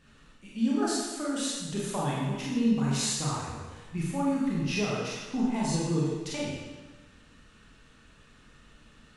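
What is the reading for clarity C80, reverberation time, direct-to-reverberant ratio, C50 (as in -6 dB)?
1.0 dB, 1.2 s, -6.0 dB, -1.0 dB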